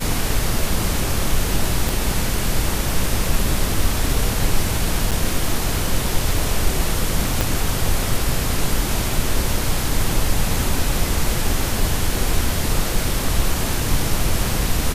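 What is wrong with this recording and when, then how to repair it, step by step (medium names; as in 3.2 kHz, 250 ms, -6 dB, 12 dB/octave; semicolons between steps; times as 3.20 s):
1.89 s: pop
5.11–5.12 s: dropout 7 ms
7.41 s: pop -3 dBFS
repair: de-click; interpolate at 5.11 s, 7 ms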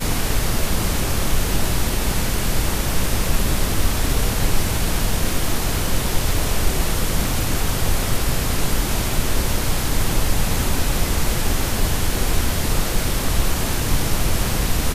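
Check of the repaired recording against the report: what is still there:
1.89 s: pop
7.41 s: pop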